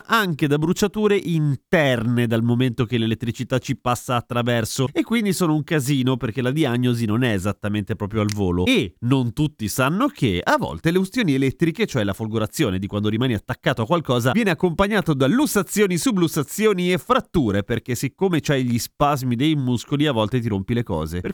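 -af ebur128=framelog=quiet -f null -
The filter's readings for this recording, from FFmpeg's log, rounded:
Integrated loudness:
  I:         -20.9 LUFS
  Threshold: -30.9 LUFS
Loudness range:
  LRA:         2.1 LU
  Threshold: -40.9 LUFS
  LRA low:   -21.8 LUFS
  LRA high:  -19.6 LUFS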